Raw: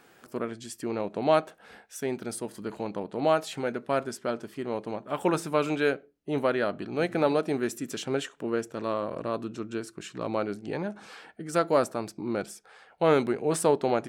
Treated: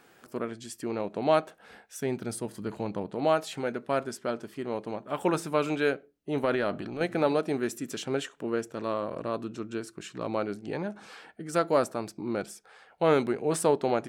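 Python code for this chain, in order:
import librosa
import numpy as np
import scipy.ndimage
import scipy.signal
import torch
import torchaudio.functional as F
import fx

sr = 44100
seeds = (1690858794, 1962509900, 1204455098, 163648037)

y = fx.peak_eq(x, sr, hz=100.0, db=7.0, octaves=1.8, at=(1.98, 3.15))
y = fx.transient(y, sr, attack_db=-10, sustain_db=5, at=(6.43, 7.01))
y = y * librosa.db_to_amplitude(-1.0)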